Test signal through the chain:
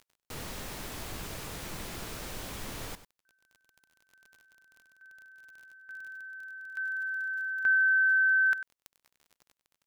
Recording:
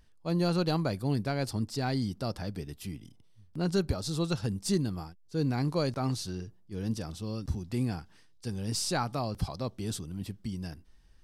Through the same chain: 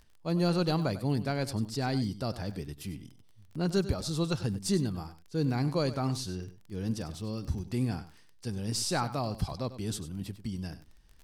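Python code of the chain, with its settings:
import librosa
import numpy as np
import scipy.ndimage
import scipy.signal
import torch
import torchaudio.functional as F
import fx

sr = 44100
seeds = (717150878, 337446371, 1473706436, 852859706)

y = fx.dmg_crackle(x, sr, seeds[0], per_s=29.0, level_db=-43.0)
y = y + 10.0 ** (-14.0 / 20.0) * np.pad(y, (int(97 * sr / 1000.0), 0))[:len(y)]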